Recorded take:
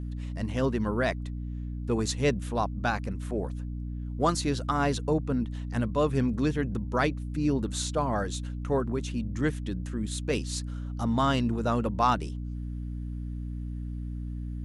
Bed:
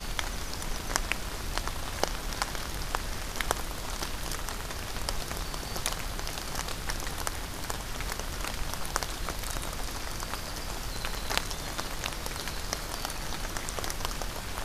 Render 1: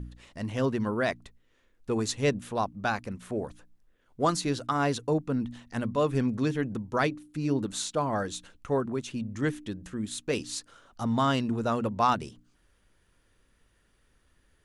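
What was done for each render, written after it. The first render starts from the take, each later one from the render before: de-hum 60 Hz, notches 5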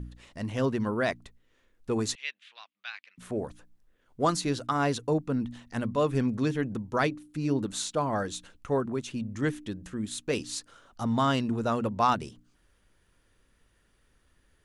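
2.15–3.18 Butterworth band-pass 2800 Hz, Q 1.4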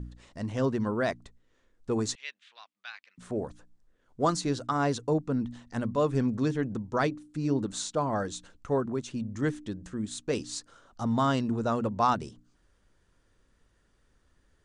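steep low-pass 8900 Hz 36 dB/oct; bell 2600 Hz -5.5 dB 1.1 oct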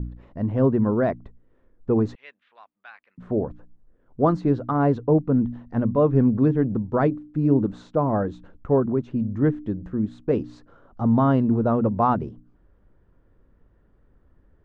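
LPF 2600 Hz 12 dB/oct; tilt shelf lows +9.5 dB, about 1500 Hz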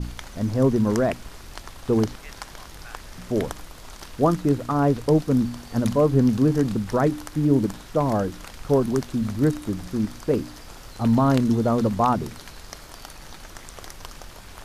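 add bed -6.5 dB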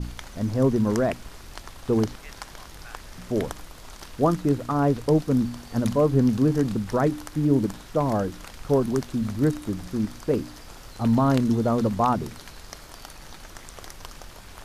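gain -1.5 dB

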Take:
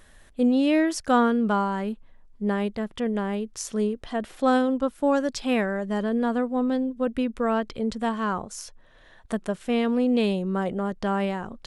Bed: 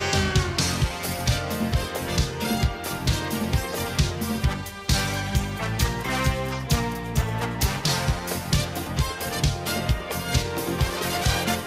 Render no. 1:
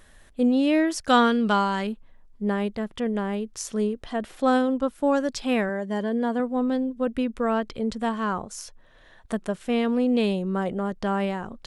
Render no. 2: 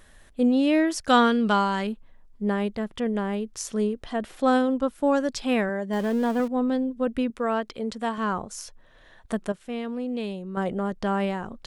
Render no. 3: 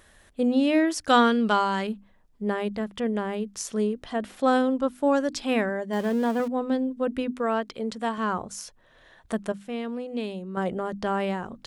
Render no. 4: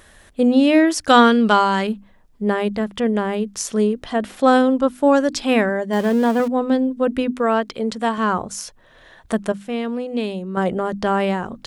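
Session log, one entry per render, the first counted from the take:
1.08–1.87 bell 4200 Hz +12.5 dB 2.2 oct; 5.69–6.4 notch comb 1300 Hz
5.93–6.48 zero-crossing step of -34.5 dBFS; 7.3–8.18 low shelf 160 Hz -12 dB; 9.52–10.57 gain -8 dB
HPF 51 Hz 6 dB/oct; notches 50/100/150/200/250/300 Hz
gain +7.5 dB; limiter -1 dBFS, peak gain reduction 1.5 dB

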